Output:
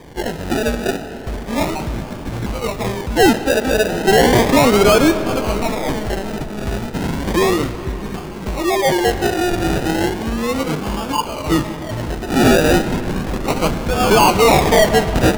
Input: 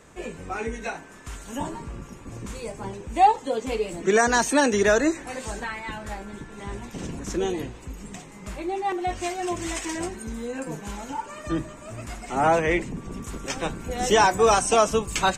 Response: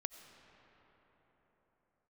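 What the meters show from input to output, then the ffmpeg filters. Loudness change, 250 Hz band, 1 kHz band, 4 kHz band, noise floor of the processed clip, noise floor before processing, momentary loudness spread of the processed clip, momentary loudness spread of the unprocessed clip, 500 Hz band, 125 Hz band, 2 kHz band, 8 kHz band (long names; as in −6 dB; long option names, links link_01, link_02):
+8.0 dB, +12.0 dB, +5.5 dB, +11.0 dB, −29 dBFS, −44 dBFS, 13 LU, 19 LU, +9.0 dB, +14.0 dB, +7.5 dB, +5.0 dB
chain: -filter_complex "[0:a]acrusher=samples=32:mix=1:aa=0.000001:lfo=1:lforange=19.2:lforate=0.34,asoftclip=type=tanh:threshold=-20dB,asplit=2[link_01][link_02];[1:a]atrim=start_sample=2205,highshelf=frequency=8800:gain=-5.5[link_03];[link_02][link_03]afir=irnorm=-1:irlink=0,volume=9.5dB[link_04];[link_01][link_04]amix=inputs=2:normalize=0,volume=2.5dB"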